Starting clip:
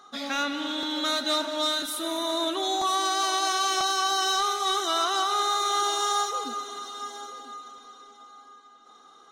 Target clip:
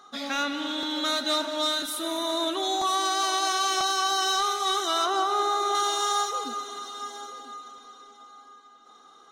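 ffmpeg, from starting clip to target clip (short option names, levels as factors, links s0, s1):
-filter_complex "[0:a]asettb=1/sr,asplit=3[s0][s1][s2];[s0]atrim=end=5.064[s3];[s1]atrim=start=5.06:end=5.75,asetpts=PTS-STARTPTS,afade=t=in:d=0.004:c=qsin,afade=t=out:st=0.686:d=0.004:c=qsin,tiltshelf=f=1200:g=6.5[s4];[s2]atrim=start=5.746[s5];[s3][s4]acrossfade=d=0.004:c1=hsin:c2=qsin[s6];[s6][s5]acrossfade=d=0.004:c1=qsin:c2=hsin"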